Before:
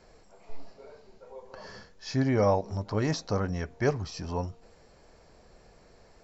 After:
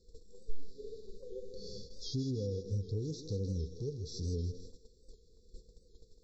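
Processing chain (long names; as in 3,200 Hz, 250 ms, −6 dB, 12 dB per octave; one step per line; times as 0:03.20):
linear-phase brick-wall band-stop 520–3,400 Hz
downward compressor 6 to 1, threshold −38 dBFS, peak gain reduction 16 dB
feedback echo with a high-pass in the loop 160 ms, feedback 60%, high-pass 240 Hz, level −10 dB
harmonic and percussive parts rebalanced percussive −11 dB
low-shelf EQ 120 Hz +6 dB
noise gate −52 dBFS, range −11 dB
parametric band 170 Hz −4.5 dB 1.6 octaves
wow of a warped record 78 rpm, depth 100 cents
level +6 dB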